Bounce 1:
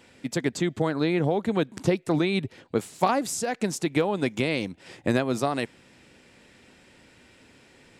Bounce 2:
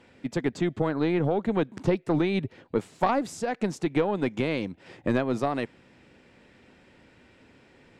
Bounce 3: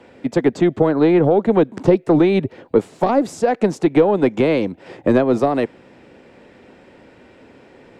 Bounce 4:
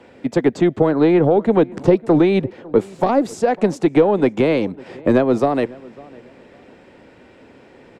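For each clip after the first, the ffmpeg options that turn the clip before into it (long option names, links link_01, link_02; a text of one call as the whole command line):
ffmpeg -i in.wav -af "aemphasis=mode=reproduction:type=75kf,aeval=exprs='0.447*(cos(1*acos(clip(val(0)/0.447,-1,1)))-cos(1*PI/2))+0.112*(cos(2*acos(clip(val(0)/0.447,-1,1)))-cos(2*PI/2))':channel_layout=same" out.wav
ffmpeg -i in.wav -filter_complex "[0:a]equalizer=frequency=520:width=0.51:gain=9,acrossover=split=330|450|3600[link_01][link_02][link_03][link_04];[link_03]alimiter=limit=-17dB:level=0:latency=1:release=197[link_05];[link_01][link_02][link_05][link_04]amix=inputs=4:normalize=0,volume=4.5dB" out.wav
ffmpeg -i in.wav -filter_complex "[0:a]asplit=2[link_01][link_02];[link_02]adelay=551,lowpass=frequency=2000:poles=1,volume=-22.5dB,asplit=2[link_03][link_04];[link_04]adelay=551,lowpass=frequency=2000:poles=1,volume=0.29[link_05];[link_01][link_03][link_05]amix=inputs=3:normalize=0" out.wav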